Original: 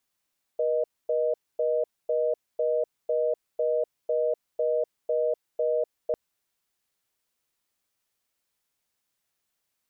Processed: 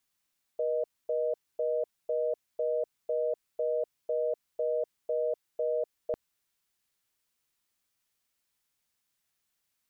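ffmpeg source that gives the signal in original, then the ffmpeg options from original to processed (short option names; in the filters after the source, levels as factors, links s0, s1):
-f lavfi -i "aevalsrc='0.0562*(sin(2*PI*480*t)+sin(2*PI*620*t))*clip(min(mod(t,0.5),0.25-mod(t,0.5))/0.005,0,1)':d=5.55:s=44100"
-af "equalizer=f=560:t=o:w=1.7:g=-4.5"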